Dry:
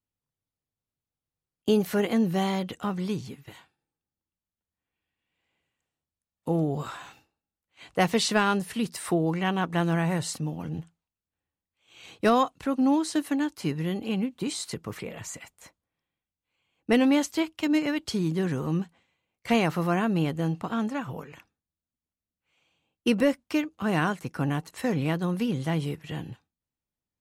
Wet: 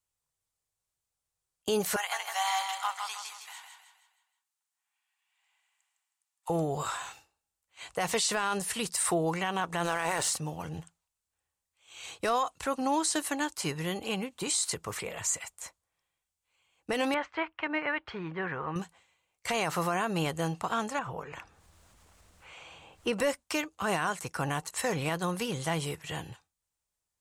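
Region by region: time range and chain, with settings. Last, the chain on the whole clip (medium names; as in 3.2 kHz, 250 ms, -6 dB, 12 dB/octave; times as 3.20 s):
1.96–6.50 s: elliptic high-pass 780 Hz, stop band 80 dB + feedback delay 158 ms, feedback 43%, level -6 dB
9.84–10.31 s: spectral peaks clipped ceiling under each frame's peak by 16 dB + hysteresis with a dead band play -37.5 dBFS
17.14–18.76 s: low-pass 2 kHz 24 dB/octave + tilt shelf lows -7 dB, about 920 Hz
20.99–23.13 s: low-pass 1.6 kHz 6 dB/octave + upward compressor, threshold -32 dBFS
whole clip: graphic EQ 125/250/1000/8000 Hz -5/-12/+3/+10 dB; peak limiter -21 dBFS; trim +2 dB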